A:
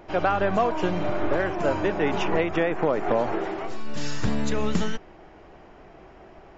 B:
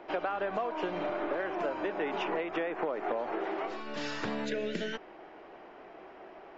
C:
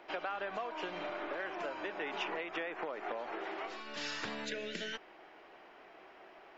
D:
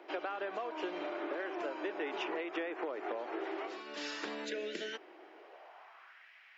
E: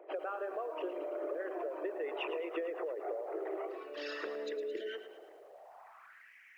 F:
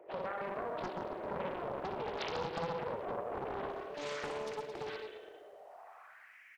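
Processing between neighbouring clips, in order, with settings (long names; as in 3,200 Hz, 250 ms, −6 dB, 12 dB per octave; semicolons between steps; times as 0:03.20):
gain on a spectral selection 0:04.45–0:04.93, 670–1,400 Hz −16 dB; three-way crossover with the lows and the highs turned down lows −21 dB, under 250 Hz, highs −20 dB, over 4,700 Hz; downward compressor 6 to 1, threshold −30 dBFS, peak gain reduction 11.5 dB
tilt shelving filter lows −6 dB, about 1,200 Hz; level −4 dB
high-pass filter sweep 330 Hz → 2,000 Hz, 0:05.32–0:06.27; level −2 dB
spectral envelope exaggerated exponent 2; feedback echo at a low word length 110 ms, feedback 55%, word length 11 bits, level −11 dB
reverse bouncing-ball delay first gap 60 ms, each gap 1.2×, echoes 5; four-comb reverb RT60 0.86 s, combs from 32 ms, DRR 10 dB; highs frequency-modulated by the lows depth 0.97 ms; level −2 dB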